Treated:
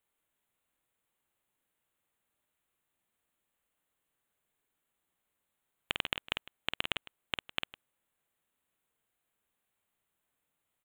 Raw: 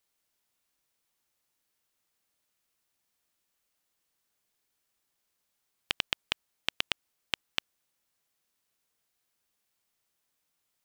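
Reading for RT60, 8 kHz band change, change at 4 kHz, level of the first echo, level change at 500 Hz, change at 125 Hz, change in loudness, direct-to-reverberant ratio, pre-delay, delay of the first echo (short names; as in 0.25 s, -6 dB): none, -8.0 dB, -3.0 dB, -5.5 dB, +1.0 dB, +1.0 dB, -2.5 dB, none, none, 50 ms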